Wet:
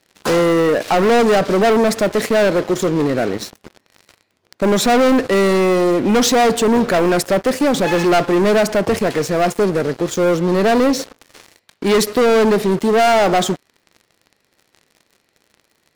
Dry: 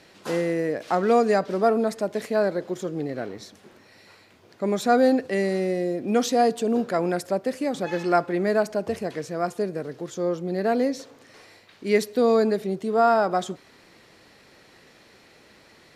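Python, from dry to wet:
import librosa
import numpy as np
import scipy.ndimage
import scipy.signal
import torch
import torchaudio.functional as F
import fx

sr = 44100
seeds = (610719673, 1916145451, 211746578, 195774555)

y = fx.leveller(x, sr, passes=5)
y = y * librosa.db_to_amplitude(-2.5)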